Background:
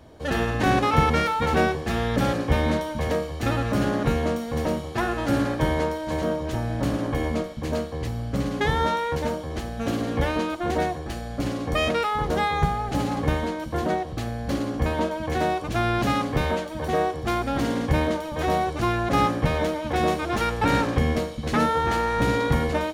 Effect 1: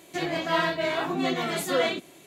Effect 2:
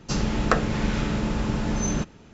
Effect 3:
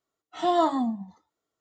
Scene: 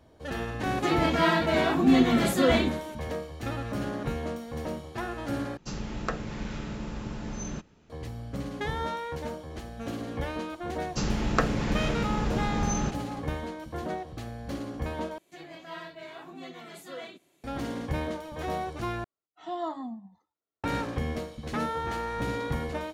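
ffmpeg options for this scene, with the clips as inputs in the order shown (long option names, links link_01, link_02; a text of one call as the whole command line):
ffmpeg -i bed.wav -i cue0.wav -i cue1.wav -i cue2.wav -filter_complex "[1:a]asplit=2[link_01][link_02];[2:a]asplit=2[link_03][link_04];[0:a]volume=-9dB[link_05];[link_01]equalizer=frequency=230:width=2:gain=14.5[link_06];[3:a]highshelf=frequency=6600:gain=-11.5[link_07];[link_05]asplit=4[link_08][link_09][link_10][link_11];[link_08]atrim=end=5.574[link_12];[link_03]atrim=end=2.33,asetpts=PTS-STARTPTS,volume=-10.5dB[link_13];[link_09]atrim=start=7.896:end=15.184[link_14];[link_02]atrim=end=2.26,asetpts=PTS-STARTPTS,volume=-16.5dB[link_15];[link_10]atrim=start=17.436:end=19.044[link_16];[link_07]atrim=end=1.6,asetpts=PTS-STARTPTS,volume=-11dB[link_17];[link_11]atrim=start=20.636[link_18];[link_06]atrim=end=2.26,asetpts=PTS-STARTPTS,volume=-0.5dB,afade=type=in:duration=0.004:curve=hsin,afade=type=out:start_time=2.256:duration=0.004:curve=hsin,adelay=690[link_19];[link_04]atrim=end=2.33,asetpts=PTS-STARTPTS,volume=-3.5dB,afade=type=in:duration=0.004:curve=hsin,afade=type=out:start_time=2.326:duration=0.004:curve=hsin,adelay=10870[link_20];[link_12][link_13]acrossfade=duration=0.004:curve1=hsin:curve2=hsin[link_21];[link_21][link_14]acrossfade=duration=0.004:curve1=hsin:curve2=hsin[link_22];[link_22][link_15]acrossfade=duration=0.004:curve1=hsin:curve2=hsin[link_23];[link_23][link_16]acrossfade=duration=0.004:curve1=hsin:curve2=hsin[link_24];[link_24][link_17]acrossfade=duration=0.004:curve1=hsin:curve2=hsin[link_25];[link_25][link_18]acrossfade=duration=0.004:curve1=hsin:curve2=hsin[link_26];[link_26][link_19][link_20]amix=inputs=3:normalize=0" out.wav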